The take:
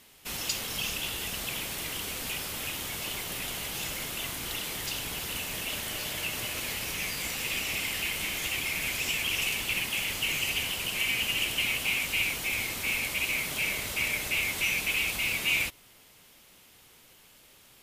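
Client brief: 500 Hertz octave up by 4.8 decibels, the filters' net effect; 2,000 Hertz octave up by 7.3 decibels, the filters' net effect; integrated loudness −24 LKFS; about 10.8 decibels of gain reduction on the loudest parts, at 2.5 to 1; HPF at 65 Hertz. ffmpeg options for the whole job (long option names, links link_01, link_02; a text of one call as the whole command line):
ffmpeg -i in.wav -af "highpass=65,equalizer=frequency=500:width_type=o:gain=5.5,equalizer=frequency=2000:width_type=o:gain=9,acompressor=threshold=-35dB:ratio=2.5,volume=8dB" out.wav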